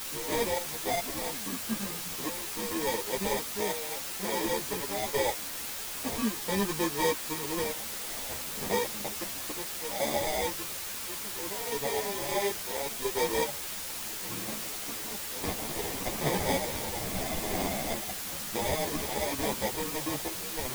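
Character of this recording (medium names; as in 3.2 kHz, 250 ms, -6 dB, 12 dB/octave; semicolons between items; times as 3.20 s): aliases and images of a low sample rate 1.4 kHz, jitter 0%; random-step tremolo, depth 85%; a quantiser's noise floor 6-bit, dither triangular; a shimmering, thickened sound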